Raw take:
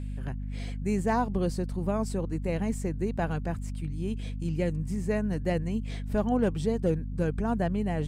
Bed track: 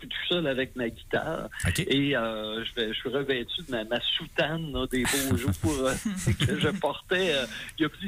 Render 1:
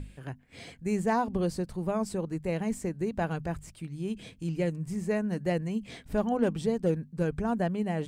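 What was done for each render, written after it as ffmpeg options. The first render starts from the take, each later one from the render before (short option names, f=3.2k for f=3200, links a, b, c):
-af "bandreject=f=50:t=h:w=6,bandreject=f=100:t=h:w=6,bandreject=f=150:t=h:w=6,bandreject=f=200:t=h:w=6,bandreject=f=250:t=h:w=6"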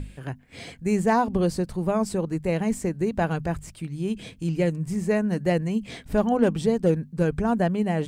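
-af "volume=6dB"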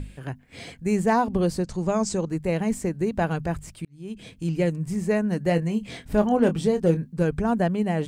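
-filter_complex "[0:a]asettb=1/sr,asplit=3[a][b][c];[a]atrim=end=1.644[d];[b]atrim=start=1.64:end=2.29,asetpts=PTS-STARTPTS,afade=t=in:d=0.004:c=qsin,afade=t=out:st=0.646:d=0.004:c=qsin,lowpass=f=6.7k:t=q:w=4[e];[c]atrim=start=2.286[f];[d][e]acrossfade=d=0.004:c1=hsin:c2=qsin[g];[g][f]acrossfade=d=0.004:c1=qsin:c2=hsin,asettb=1/sr,asplit=3[h][i][j];[h]atrim=end=5.454[k];[i]atrim=start=5.45:end=7.13,asetpts=PTS-STARTPTS,afade=t=in:d=0.004:c=qsin,afade=t=out:st=1.676:d=0.004:c=qsin,asplit=2[l][m];[m]adelay=24,volume=-9.5dB[n];[l][n]amix=inputs=2:normalize=0,atrim=end_sample=74088[o];[j]atrim=start=7.126[p];[k][o]acrossfade=d=0.004:c1=hsin:c2=qsin[q];[q][p]acrossfade=d=0.004:c1=qsin:c2=hsin,asplit=2[r][s];[r]atrim=end=3.85,asetpts=PTS-STARTPTS,afade=t=out:st=3.846:d=0.004:c=hsin[t];[s]atrim=start=3.85,asetpts=PTS-STARTPTS,afade=t=in:d=0.6[u];[t][u]concat=n=2:v=0:a=1"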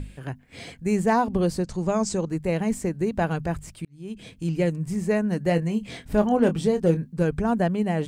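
-af anull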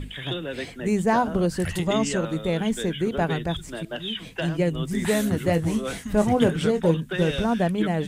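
-filter_complex "[1:a]volume=-4.5dB[a];[0:a][a]amix=inputs=2:normalize=0"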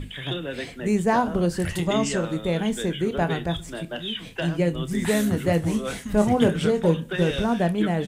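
-filter_complex "[0:a]asplit=2[a][b];[b]adelay=29,volume=-12.5dB[c];[a][c]amix=inputs=2:normalize=0,aecho=1:1:66|132|198:0.0708|0.0361|0.0184"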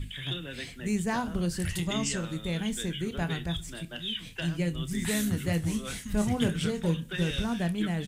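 -af "equalizer=f=580:t=o:w=2.8:g=-13"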